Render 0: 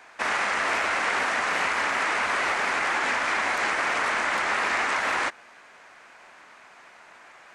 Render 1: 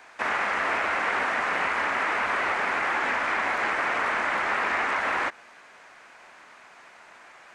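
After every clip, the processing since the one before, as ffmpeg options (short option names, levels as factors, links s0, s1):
-filter_complex "[0:a]acrossover=split=2900[s0][s1];[s1]acompressor=threshold=0.00501:ratio=4:attack=1:release=60[s2];[s0][s2]amix=inputs=2:normalize=0"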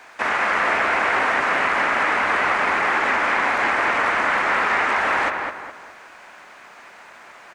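-filter_complex "[0:a]acrusher=bits=11:mix=0:aa=0.000001,asplit=2[s0][s1];[s1]adelay=207,lowpass=f=2500:p=1,volume=0.631,asplit=2[s2][s3];[s3]adelay=207,lowpass=f=2500:p=1,volume=0.4,asplit=2[s4][s5];[s5]adelay=207,lowpass=f=2500:p=1,volume=0.4,asplit=2[s6][s7];[s7]adelay=207,lowpass=f=2500:p=1,volume=0.4,asplit=2[s8][s9];[s9]adelay=207,lowpass=f=2500:p=1,volume=0.4[s10];[s2][s4][s6][s8][s10]amix=inputs=5:normalize=0[s11];[s0][s11]amix=inputs=2:normalize=0,volume=1.78"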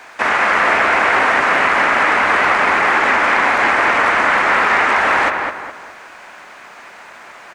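-af "asoftclip=type=hard:threshold=0.299,volume=2"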